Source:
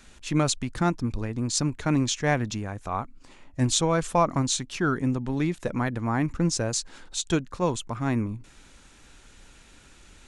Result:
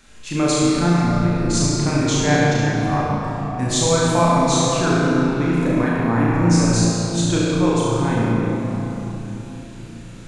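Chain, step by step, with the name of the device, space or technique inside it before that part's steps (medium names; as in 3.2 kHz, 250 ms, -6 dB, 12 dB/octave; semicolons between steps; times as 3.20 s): tunnel (flutter echo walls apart 6 m, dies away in 0.63 s; reverberation RT60 4.1 s, pre-delay 24 ms, DRR -4 dB)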